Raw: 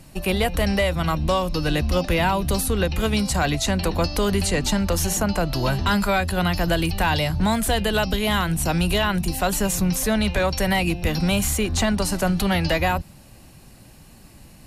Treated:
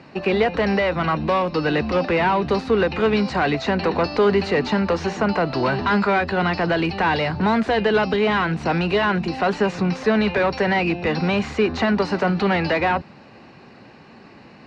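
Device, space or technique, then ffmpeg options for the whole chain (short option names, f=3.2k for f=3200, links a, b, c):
overdrive pedal into a guitar cabinet: -filter_complex "[0:a]asplit=2[a][b];[b]highpass=f=720:p=1,volume=17dB,asoftclip=type=tanh:threshold=-10.5dB[c];[a][c]amix=inputs=2:normalize=0,lowpass=f=1.9k:p=1,volume=-6dB,highpass=100,equalizer=f=230:t=q:w=4:g=4,equalizer=f=420:t=q:w=4:g=6,equalizer=f=610:t=q:w=4:g=-3,equalizer=f=3.3k:t=q:w=4:g=-8,lowpass=f=4.5k:w=0.5412,lowpass=f=4.5k:w=1.3066"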